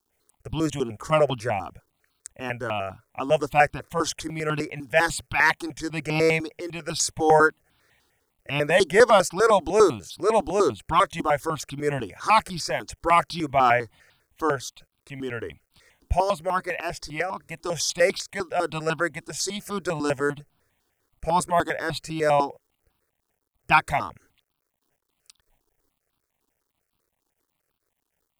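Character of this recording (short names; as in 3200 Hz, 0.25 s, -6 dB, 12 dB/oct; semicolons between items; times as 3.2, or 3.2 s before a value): a quantiser's noise floor 12-bit, dither none; notches that jump at a steady rate 10 Hz 570–1900 Hz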